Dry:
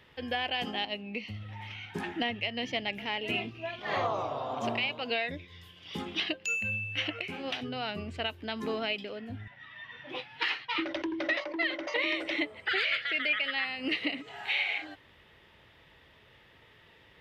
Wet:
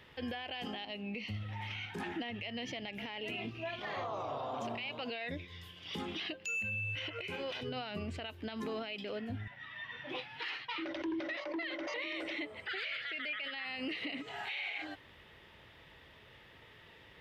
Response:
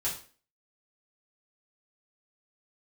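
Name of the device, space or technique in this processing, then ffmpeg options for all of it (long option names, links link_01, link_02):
stacked limiters: -filter_complex "[0:a]asettb=1/sr,asplit=3[link_01][link_02][link_03];[link_01]atrim=end=6.754[link_04];[link_02]atrim=start=6.75:end=7.72,asetpts=PTS-STARTPTS,afade=type=in:duration=0.004:curve=qsin,afade=type=out:start_time=0.966:duration=0.004:curve=qsin,aecho=1:1:2:0.55,atrim=end_sample=42777[link_05];[link_03]atrim=start=7.716[link_06];[link_04][link_05]acrossfade=duration=0.004:curve1=hsin:curve2=qsin[link_07];[link_07][link_06]acrossfade=duration=0.004:curve1=qsin:curve2=hsin,alimiter=limit=-22.5dB:level=0:latency=1:release=217,alimiter=level_in=2dB:limit=-24dB:level=0:latency=1:release=94,volume=-2dB,alimiter=level_in=8dB:limit=-24dB:level=0:latency=1:release=40,volume=-8dB,volume=1dB"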